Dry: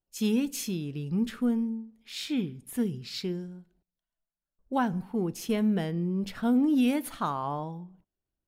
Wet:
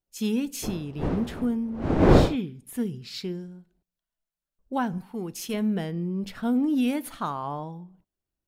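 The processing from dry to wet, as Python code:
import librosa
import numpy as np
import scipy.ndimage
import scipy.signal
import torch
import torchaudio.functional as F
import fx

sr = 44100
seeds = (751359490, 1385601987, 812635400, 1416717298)

y = fx.dmg_wind(x, sr, seeds[0], corner_hz=390.0, level_db=-26.0, at=(0.62, 2.35), fade=0.02)
y = fx.tilt_shelf(y, sr, db=-4.5, hz=1200.0, at=(4.98, 5.54))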